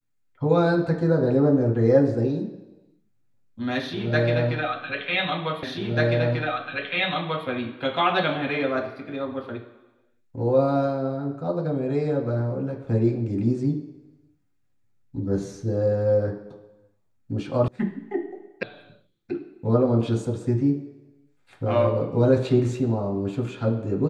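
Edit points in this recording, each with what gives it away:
0:05.63: the same again, the last 1.84 s
0:17.68: cut off before it has died away
0:18.63: cut off before it has died away

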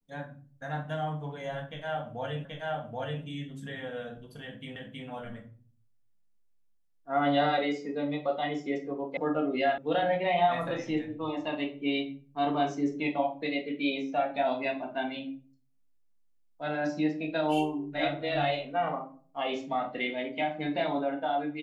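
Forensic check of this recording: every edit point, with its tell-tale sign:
0:02.45: the same again, the last 0.78 s
0:04.76: the same again, the last 0.32 s
0:09.17: cut off before it has died away
0:09.78: cut off before it has died away

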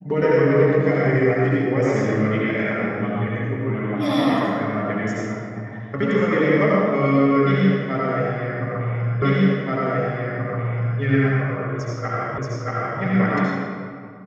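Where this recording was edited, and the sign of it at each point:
0:09.22: the same again, the last 1.78 s
0:12.38: the same again, the last 0.63 s

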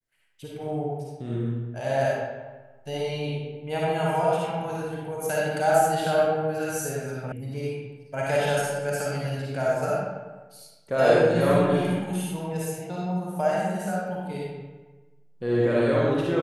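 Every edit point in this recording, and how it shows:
0:07.32: cut off before it has died away

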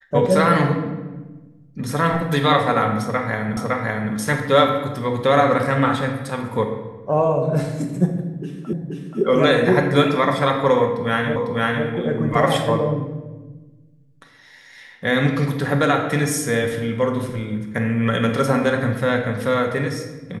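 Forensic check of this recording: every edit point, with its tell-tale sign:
0:03.57: the same again, the last 0.56 s
0:08.73: the same again, the last 0.48 s
0:11.36: the same again, the last 0.5 s

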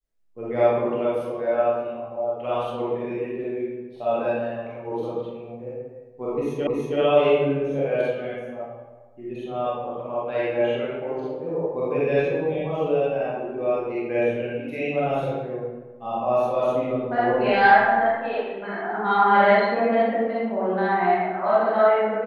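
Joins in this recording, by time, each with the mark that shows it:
0:06.67: the same again, the last 0.32 s

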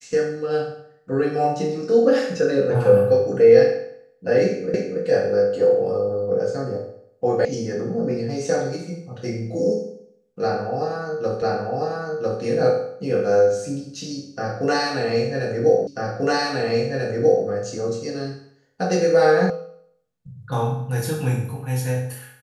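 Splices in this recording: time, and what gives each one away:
0:04.74: the same again, the last 0.28 s
0:07.45: cut off before it has died away
0:11.42: the same again, the last 1 s
0:15.87: the same again, the last 1.59 s
0:19.50: cut off before it has died away

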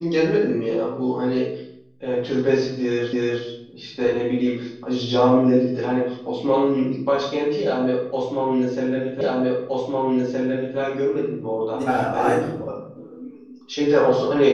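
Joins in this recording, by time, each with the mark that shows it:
0:03.13: the same again, the last 0.31 s
0:09.21: the same again, the last 1.57 s

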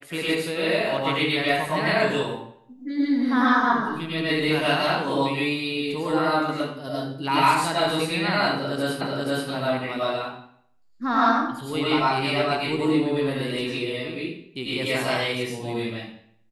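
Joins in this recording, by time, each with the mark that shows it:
0:09.01: the same again, the last 0.48 s

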